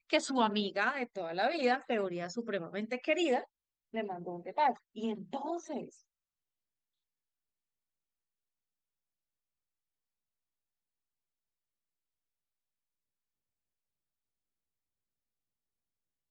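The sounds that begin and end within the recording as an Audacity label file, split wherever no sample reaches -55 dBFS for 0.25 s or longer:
3.930000	5.970000	sound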